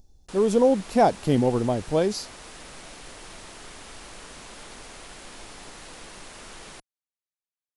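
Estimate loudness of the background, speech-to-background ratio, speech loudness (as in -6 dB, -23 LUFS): -42.5 LUFS, 19.5 dB, -23.0 LUFS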